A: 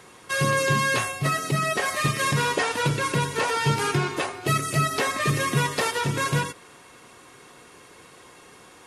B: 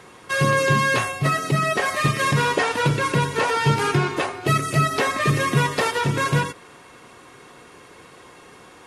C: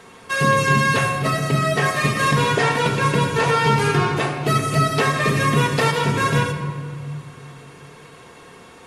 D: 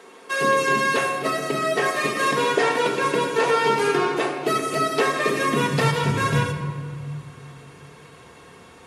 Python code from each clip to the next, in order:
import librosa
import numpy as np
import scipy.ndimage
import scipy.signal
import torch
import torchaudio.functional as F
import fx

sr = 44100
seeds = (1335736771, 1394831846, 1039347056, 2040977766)

y1 = fx.high_shelf(x, sr, hz=4500.0, db=-7.0)
y1 = y1 * 10.0 ** (4.0 / 20.0)
y2 = fx.room_shoebox(y1, sr, seeds[0], volume_m3=3200.0, walls='mixed', distance_m=1.6)
y3 = fx.filter_sweep_highpass(y2, sr, from_hz=340.0, to_hz=61.0, start_s=5.47, end_s=6.14, q=1.7)
y3 = y3 * 10.0 ** (-3.0 / 20.0)